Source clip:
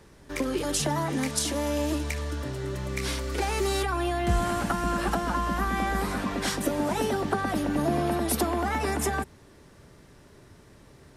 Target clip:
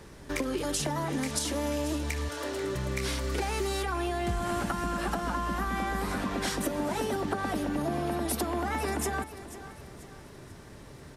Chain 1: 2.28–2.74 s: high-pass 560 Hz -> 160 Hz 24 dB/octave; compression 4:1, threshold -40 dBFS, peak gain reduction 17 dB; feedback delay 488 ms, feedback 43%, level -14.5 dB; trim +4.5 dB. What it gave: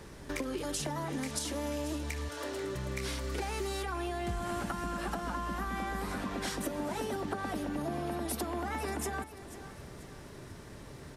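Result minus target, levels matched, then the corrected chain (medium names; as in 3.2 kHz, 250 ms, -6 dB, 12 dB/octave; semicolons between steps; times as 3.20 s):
compression: peak gain reduction +5 dB
2.28–2.74 s: high-pass 560 Hz -> 160 Hz 24 dB/octave; compression 4:1, threshold -33.5 dBFS, peak gain reduction 12 dB; feedback delay 488 ms, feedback 43%, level -14.5 dB; trim +4.5 dB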